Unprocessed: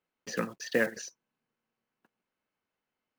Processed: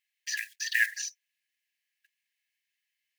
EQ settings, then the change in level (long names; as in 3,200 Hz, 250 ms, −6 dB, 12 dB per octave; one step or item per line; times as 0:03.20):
linear-phase brick-wall high-pass 1,600 Hz
+7.5 dB